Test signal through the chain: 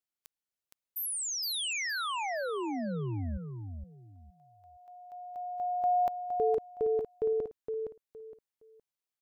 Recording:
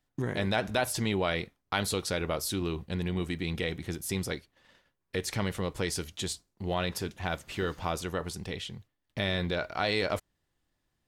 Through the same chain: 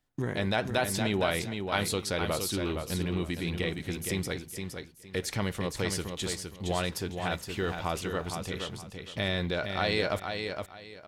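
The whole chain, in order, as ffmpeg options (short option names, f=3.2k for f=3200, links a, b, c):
-af "aecho=1:1:465|930|1395:0.501|0.12|0.0289"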